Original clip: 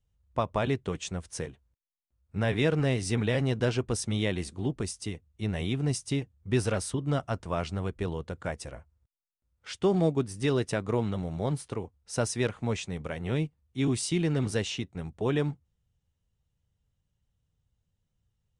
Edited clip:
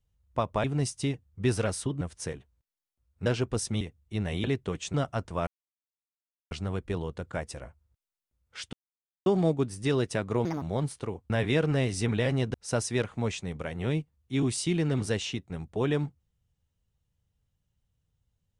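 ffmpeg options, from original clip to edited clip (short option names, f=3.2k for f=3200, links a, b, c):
-filter_complex "[0:a]asplit=13[a][b][c][d][e][f][g][h][i][j][k][l][m];[a]atrim=end=0.642[n];[b]atrim=start=5.718:end=7.092[o];[c]atrim=start=1.138:end=2.392[p];[d]atrim=start=3.628:end=4.182[q];[e]atrim=start=5.088:end=5.722[r];[f]atrim=start=0.638:end=1.142[s];[g]atrim=start=7.088:end=7.62,asetpts=PTS-STARTPTS,afade=t=out:st=0.528:d=0.004:c=hsin,apad=pad_dur=1.04[t];[h]atrim=start=7.62:end=9.84,asetpts=PTS-STARTPTS,afade=t=in:d=0.004:c=hsin,afade=t=out:st=2.216:d=0.004:c=hsin,apad=pad_dur=0.53[u];[i]atrim=start=9.84:end=11.034,asetpts=PTS-STARTPTS,afade=t=in:d=0.004:c=hsin[v];[j]atrim=start=11.03:end=11.31,asetpts=PTS-STARTPTS,asetrate=72765,aresample=44100[w];[k]atrim=start=11.306:end=11.992[x];[l]atrim=start=2.388:end=3.632[y];[m]atrim=start=11.988[z];[n][o]acrossfade=d=0.004:c1=hsin:c2=hsin[aa];[aa][p]acrossfade=d=0.004:c1=hsin:c2=hsin[ab];[ab][q]acrossfade=d=0.004:c1=hsin:c2=hsin[ac];[ac][r]acrossfade=d=0.004:c1=hsin:c2=hsin[ad];[ad][s]acrossfade=d=0.004:c1=hsin:c2=hsin[ae];[t][u][v]concat=n=3:v=0:a=1[af];[ae][af]acrossfade=d=0.004:c1=hsin:c2=hsin[ag];[ag][w]acrossfade=d=0.004:c1=hsin:c2=hsin[ah];[ah][x]acrossfade=d=0.004:c1=hsin:c2=hsin[ai];[ai][y]acrossfade=d=0.004:c1=hsin:c2=hsin[aj];[aj][z]acrossfade=d=0.004:c1=hsin:c2=hsin"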